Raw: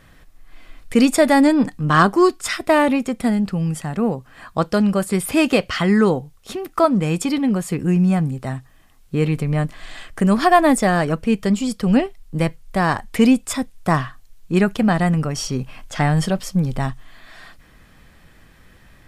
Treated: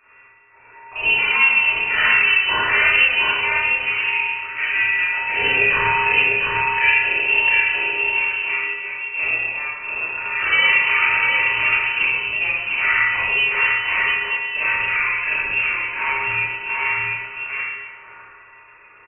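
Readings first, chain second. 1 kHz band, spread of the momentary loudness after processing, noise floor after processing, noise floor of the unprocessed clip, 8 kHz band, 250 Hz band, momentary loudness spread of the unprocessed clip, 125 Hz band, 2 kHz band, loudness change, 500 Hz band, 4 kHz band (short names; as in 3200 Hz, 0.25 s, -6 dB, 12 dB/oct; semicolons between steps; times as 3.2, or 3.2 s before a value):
-3.0 dB, 10 LU, -47 dBFS, -50 dBFS, under -40 dB, -27.0 dB, 13 LU, -20.0 dB, +12.5 dB, +2.0 dB, -13.0 dB, +7.5 dB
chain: Wiener smoothing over 9 samples; in parallel at +3 dB: negative-ratio compressor -21 dBFS, ratio -1; on the sum: rippled Chebyshev high-pass 250 Hz, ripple 3 dB; one-sided clip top -12.5 dBFS, bottom -4 dBFS; resonator 520 Hz, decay 0.53 s, mix 90%; on a send: echo 0.7 s -3.5 dB; on the sum: Schroeder reverb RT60 1.3 s, combs from 26 ms, DRR -9.5 dB; inverted band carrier 3000 Hz; gain +6 dB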